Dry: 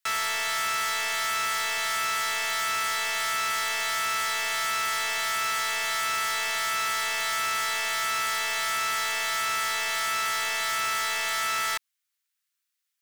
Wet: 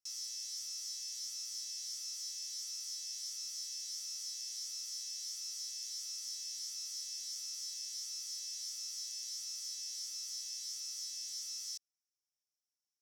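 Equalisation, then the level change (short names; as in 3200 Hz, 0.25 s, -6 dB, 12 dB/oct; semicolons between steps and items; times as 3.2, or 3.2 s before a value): band-pass 5500 Hz, Q 9.6; differentiator; tilt +3 dB/oct; -4.5 dB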